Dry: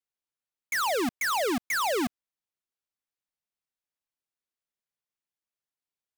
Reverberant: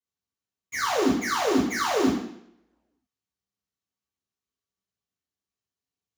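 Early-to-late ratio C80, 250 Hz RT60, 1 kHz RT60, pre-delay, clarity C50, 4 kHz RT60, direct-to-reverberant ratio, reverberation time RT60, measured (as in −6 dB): 6.5 dB, 0.70 s, 0.65 s, 3 ms, 2.5 dB, 0.70 s, −13.0 dB, 0.70 s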